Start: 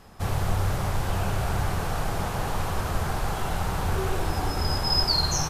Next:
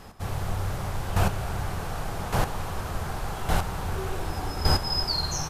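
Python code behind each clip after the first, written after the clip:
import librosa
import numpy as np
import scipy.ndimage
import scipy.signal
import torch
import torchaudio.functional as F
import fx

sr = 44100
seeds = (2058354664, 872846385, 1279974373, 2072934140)

y = fx.chopper(x, sr, hz=0.86, depth_pct=65, duty_pct=10)
y = F.gain(torch.from_numpy(y), 5.0).numpy()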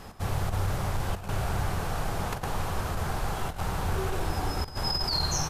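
y = fx.over_compress(x, sr, threshold_db=-27.0, ratio=-0.5)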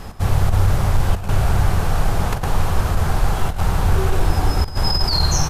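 y = fx.low_shelf(x, sr, hz=110.0, db=8.5)
y = F.gain(torch.from_numpy(y), 7.5).numpy()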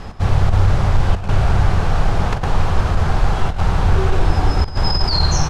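y = scipy.signal.sosfilt(scipy.signal.butter(2, 5300.0, 'lowpass', fs=sr, output='sos'), x)
y = F.gain(torch.from_numpy(y), 2.0).numpy()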